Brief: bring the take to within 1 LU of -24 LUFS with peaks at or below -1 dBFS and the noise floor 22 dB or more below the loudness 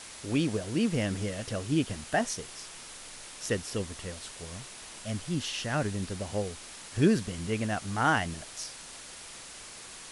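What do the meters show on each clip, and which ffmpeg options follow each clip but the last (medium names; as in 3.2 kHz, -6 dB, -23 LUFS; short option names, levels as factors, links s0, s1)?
noise floor -46 dBFS; noise floor target -54 dBFS; loudness -31.5 LUFS; peak level -12.5 dBFS; loudness target -24.0 LUFS
-> -af "afftdn=nr=8:nf=-46"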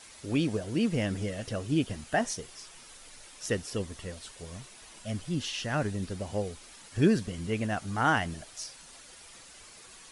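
noise floor -51 dBFS; noise floor target -54 dBFS
-> -af "afftdn=nr=6:nf=-51"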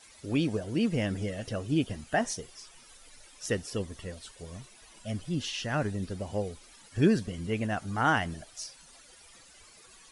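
noise floor -55 dBFS; loudness -31.5 LUFS; peak level -12.5 dBFS; loudness target -24.0 LUFS
-> -af "volume=2.37"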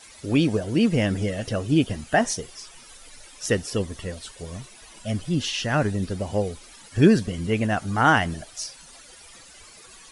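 loudness -24.0 LUFS; peak level -5.0 dBFS; noise floor -48 dBFS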